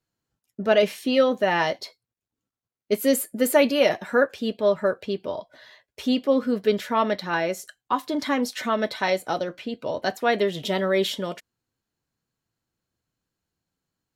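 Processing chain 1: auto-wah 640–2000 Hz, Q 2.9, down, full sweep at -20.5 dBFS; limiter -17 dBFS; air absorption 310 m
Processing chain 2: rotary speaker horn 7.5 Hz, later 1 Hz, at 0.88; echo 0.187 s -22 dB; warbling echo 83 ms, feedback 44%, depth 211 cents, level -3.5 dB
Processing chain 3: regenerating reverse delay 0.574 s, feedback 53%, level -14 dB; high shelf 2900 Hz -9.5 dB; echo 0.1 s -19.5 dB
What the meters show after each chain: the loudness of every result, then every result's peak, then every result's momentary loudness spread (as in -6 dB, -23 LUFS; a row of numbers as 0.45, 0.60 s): -31.0, -24.5, -24.5 LUFS; -18.0, -7.0, -7.0 dBFS; 14, 12, 16 LU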